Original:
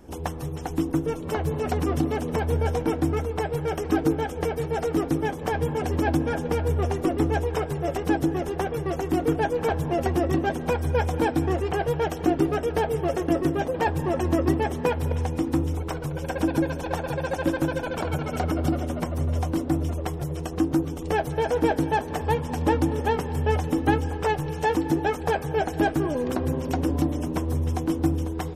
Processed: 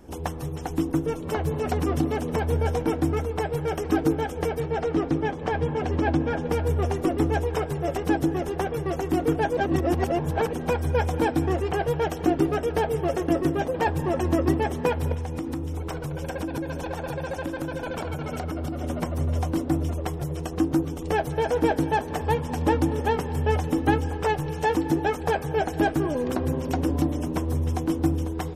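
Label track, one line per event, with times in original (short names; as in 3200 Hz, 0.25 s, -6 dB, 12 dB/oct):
4.600000	6.470000	LPF 4600 Hz
9.570000	10.530000	reverse
15.140000	18.840000	compressor, threshold -26 dBFS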